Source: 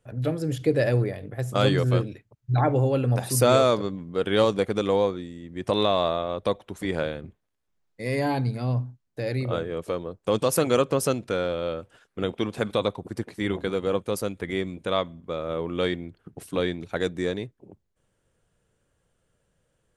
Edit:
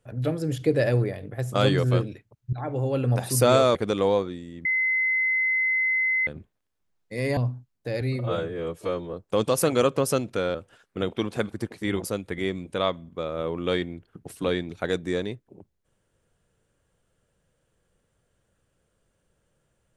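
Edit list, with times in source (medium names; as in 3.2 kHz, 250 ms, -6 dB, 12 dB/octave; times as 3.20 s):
2.53–3.08 s: fade in, from -17.5 dB
3.75–4.63 s: delete
5.53–7.15 s: bleep 2.05 kHz -20.5 dBFS
8.25–8.69 s: delete
9.33–10.08 s: stretch 1.5×
11.49–11.76 s: delete
12.73–13.08 s: delete
13.60–14.15 s: delete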